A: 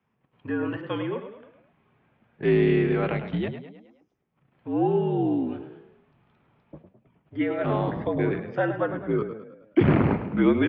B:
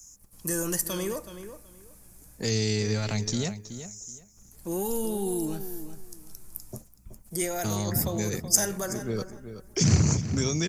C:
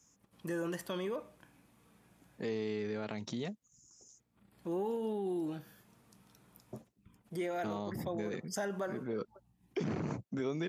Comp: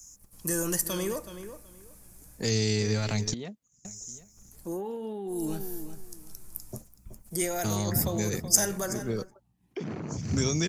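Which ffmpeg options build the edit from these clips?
-filter_complex "[2:a]asplit=3[a][b][c];[1:a]asplit=4[d][e][f][g];[d]atrim=end=3.342[h];[a]atrim=start=3.338:end=3.852[i];[e]atrim=start=3.848:end=4.82[j];[b]atrim=start=4.58:end=5.5[k];[f]atrim=start=5.26:end=9.35[l];[c]atrim=start=9.11:end=10.32[m];[g]atrim=start=10.08[n];[h][i]acrossfade=d=0.004:c1=hsin:c2=hsin[o];[o][j]acrossfade=d=0.004:c1=hsin:c2=hsin[p];[p][k]acrossfade=d=0.24:c1=tri:c2=tri[q];[q][l]acrossfade=d=0.24:c1=tri:c2=tri[r];[r][m]acrossfade=d=0.24:c1=tri:c2=tri[s];[s][n]acrossfade=d=0.24:c1=tri:c2=tri"

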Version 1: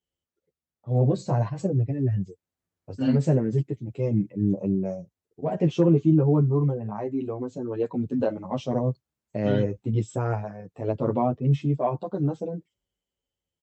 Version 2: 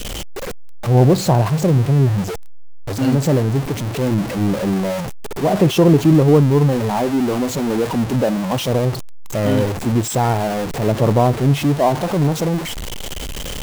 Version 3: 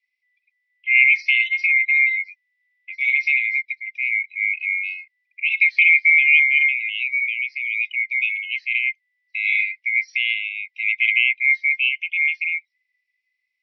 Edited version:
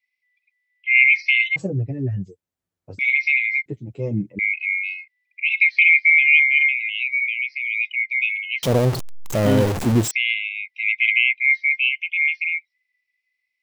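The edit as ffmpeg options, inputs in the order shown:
-filter_complex "[0:a]asplit=2[a][b];[2:a]asplit=4[c][d][e][f];[c]atrim=end=1.562[g];[a]atrim=start=1.558:end=2.992[h];[d]atrim=start=2.988:end=3.662[i];[b]atrim=start=3.658:end=4.392[j];[e]atrim=start=4.388:end=8.632[k];[1:a]atrim=start=8.628:end=10.112[l];[f]atrim=start=10.108[m];[g][h]acrossfade=d=0.004:c1=hsin:c2=hsin[n];[n][i]acrossfade=d=0.004:c1=hsin:c2=hsin[o];[o][j]acrossfade=d=0.004:c1=hsin:c2=hsin[p];[p][k]acrossfade=d=0.004:c1=hsin:c2=hsin[q];[q][l]acrossfade=d=0.004:c1=hsin:c2=hsin[r];[r][m]acrossfade=d=0.004:c1=hsin:c2=hsin"

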